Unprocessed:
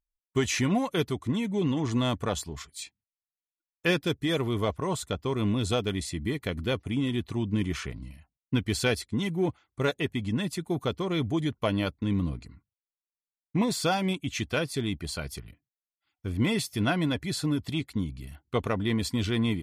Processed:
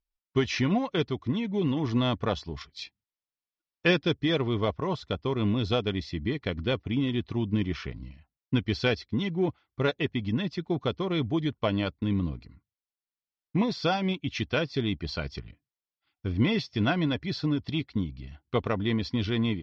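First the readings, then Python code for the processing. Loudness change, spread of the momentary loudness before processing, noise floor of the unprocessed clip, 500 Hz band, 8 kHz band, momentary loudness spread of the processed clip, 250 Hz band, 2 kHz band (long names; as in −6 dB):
+0.5 dB, 8 LU, below −85 dBFS, +0.5 dB, below −10 dB, 8 LU, +0.5 dB, 0.0 dB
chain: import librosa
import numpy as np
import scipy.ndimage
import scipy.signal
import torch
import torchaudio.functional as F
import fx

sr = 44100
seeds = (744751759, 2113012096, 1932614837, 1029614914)

p1 = scipy.signal.sosfilt(scipy.signal.cheby1(5, 1.0, 5500.0, 'lowpass', fs=sr, output='sos'), x)
p2 = fx.transient(p1, sr, attack_db=1, sustain_db=-3)
p3 = fx.rider(p2, sr, range_db=10, speed_s=2.0)
p4 = p2 + F.gain(torch.from_numpy(p3), 1.0).numpy()
y = F.gain(torch.from_numpy(p4), -6.5).numpy()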